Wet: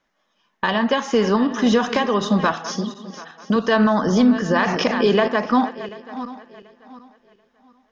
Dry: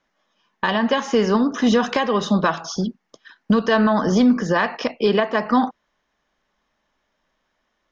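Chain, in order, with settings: backward echo that repeats 368 ms, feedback 50%, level -13 dB; 2.52–3.56 s: high-pass 210 Hz 6 dB/octave; 4.67–5.28 s: level flattener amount 50%

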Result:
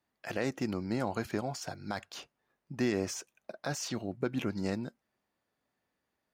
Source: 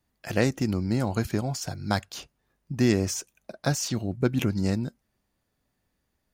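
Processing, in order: high-pass 470 Hz 6 dB/octave; peak limiter -19 dBFS, peak gain reduction 9 dB; treble shelf 4.1 kHz -11.5 dB

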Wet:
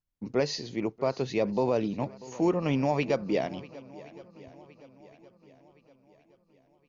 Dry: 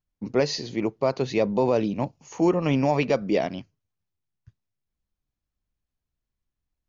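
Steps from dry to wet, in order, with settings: shuffle delay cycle 1067 ms, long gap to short 1.5:1, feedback 42%, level -19.5 dB; trim -4.5 dB

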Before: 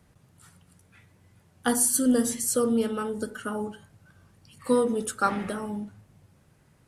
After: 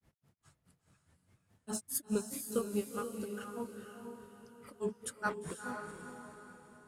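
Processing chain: granulator 149 ms, grains 4.8 per s, spray 23 ms, pitch spread up and down by 3 st; echo that smears into a reverb 472 ms, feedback 42%, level -5.5 dB; trim -7.5 dB

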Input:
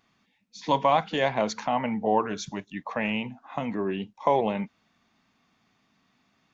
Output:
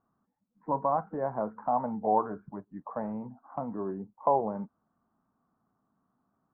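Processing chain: steep low-pass 1.4 kHz 48 dB/octave; 1.61–4.38 s: dynamic bell 760 Hz, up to +6 dB, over -35 dBFS, Q 1.5; trim -6 dB

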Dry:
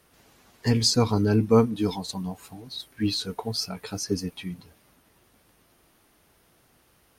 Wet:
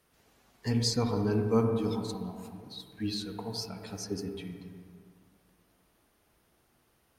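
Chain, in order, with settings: on a send: distance through air 340 m + reverberation RT60 2.1 s, pre-delay 43 ms, DRR 4.5 dB; on the sum: trim -8.5 dB

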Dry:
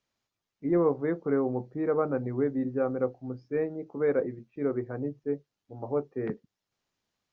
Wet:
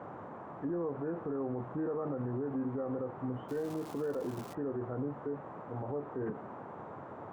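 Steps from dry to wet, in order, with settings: knee-point frequency compression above 1.1 kHz 1.5:1; compression 3:1, threshold -32 dBFS, peak gain reduction 9.5 dB; band noise 100–1100 Hz -50 dBFS; 3.48–4.53 s: crackle 510 per s -44 dBFS; peak limiter -32.5 dBFS, peak gain reduction 9 dB; trim +4 dB

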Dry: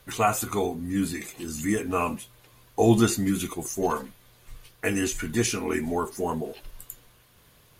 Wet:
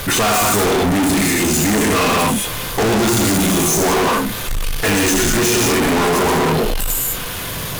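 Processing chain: gated-style reverb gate 240 ms flat, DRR -1.5 dB; power-law waveshaper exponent 0.5; hard clipper -20.5 dBFS, distortion -8 dB; trim +6 dB

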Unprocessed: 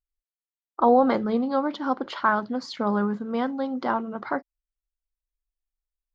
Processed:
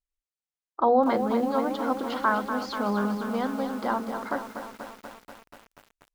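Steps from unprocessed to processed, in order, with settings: hum notches 60/120/180/240/300/360/420 Hz; resampled via 22.05 kHz; bit-crushed delay 242 ms, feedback 80%, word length 7-bit, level -8.5 dB; trim -2.5 dB

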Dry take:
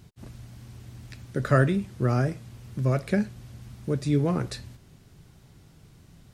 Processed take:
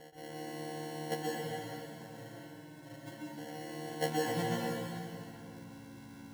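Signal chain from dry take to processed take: partials quantised in pitch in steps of 4 st; 1.22–3.38 s: elliptic band-stop 1.1–8.6 kHz; compression, threshold -29 dBFS, peak gain reduction 12 dB; band-pass sweep 4.5 kHz -> 300 Hz, 4.10–4.98 s; sample-and-hold 36×; reverberation RT60 2.7 s, pre-delay 115 ms, DRR -4.5 dB; trim +8 dB

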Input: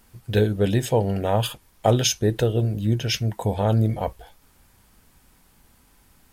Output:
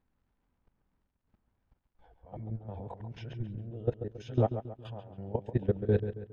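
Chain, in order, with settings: reverse the whole clip; treble shelf 2.4 kHz -7.5 dB; level held to a coarse grid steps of 18 dB; trance gate "xxxxxx.xxx.x.x.x" 84 bpm -12 dB; crackle 140 per s -59 dBFS; tape spacing loss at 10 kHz 32 dB; on a send: filtered feedback delay 137 ms, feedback 43%, low-pass 3.9 kHz, level -10 dB; on the sum: trim -4 dB

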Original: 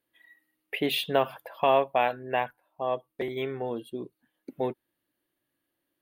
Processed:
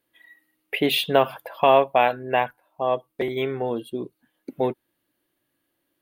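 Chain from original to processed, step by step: band-stop 1.8 kHz, Q 25; trim +6 dB

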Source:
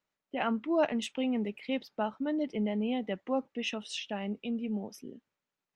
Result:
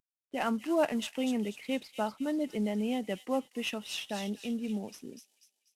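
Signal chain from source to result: CVSD coder 64 kbps; feedback echo behind a high-pass 244 ms, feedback 39%, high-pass 3.7 kHz, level -3.5 dB

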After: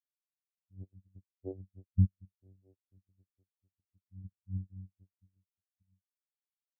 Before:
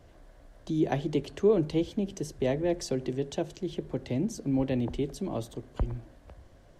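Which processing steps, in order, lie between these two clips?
1.93–2.34 s: tilt EQ -2.5 dB/octave; vocoder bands 4, saw 94.9 Hz; spectral contrast expander 4:1; trim -4 dB

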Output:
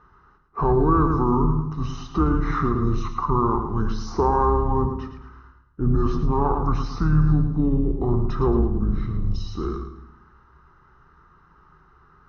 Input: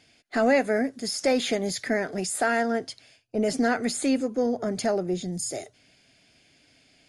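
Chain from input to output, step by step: octave divider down 2 oct, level +3 dB; peaking EQ 110 Hz +15 dB 0.2 oct; flutter echo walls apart 10.9 m, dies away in 0.44 s; peak limiter -14.5 dBFS, peak gain reduction 6.5 dB; speed mistake 78 rpm record played at 45 rpm; resonant high shelf 1.8 kHz -13.5 dB, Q 3; on a send at -11 dB: reverberation RT60 0.65 s, pre-delay 3 ms; on the sum: trim +2.5 dB

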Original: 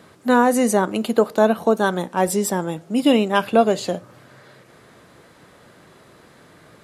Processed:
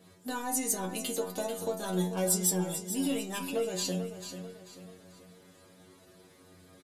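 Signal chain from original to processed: in parallel at -6 dB: saturation -19 dBFS, distortion -6 dB; on the sum: peaking EQ 1.3 kHz -6.5 dB 1.7 oct; compression, threshold -18 dBFS, peak gain reduction 8.5 dB; treble shelf 3.8 kHz +12 dB; inharmonic resonator 90 Hz, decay 0.42 s, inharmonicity 0.002; feedback delay 440 ms, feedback 43%, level -10 dB; tape noise reduction on one side only decoder only

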